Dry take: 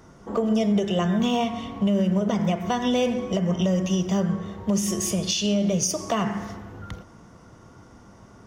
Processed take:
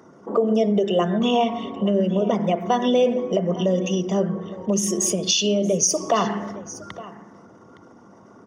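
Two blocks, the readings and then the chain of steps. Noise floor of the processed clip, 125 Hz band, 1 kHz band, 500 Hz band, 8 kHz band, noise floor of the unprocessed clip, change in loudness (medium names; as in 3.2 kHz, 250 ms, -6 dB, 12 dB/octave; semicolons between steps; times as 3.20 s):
-49 dBFS, -1.5 dB, +5.0 dB, +6.0 dB, +5.5 dB, -50 dBFS, +2.5 dB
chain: resonances exaggerated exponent 1.5; high-pass 260 Hz 12 dB/octave; delay 864 ms -18 dB; trim +5.5 dB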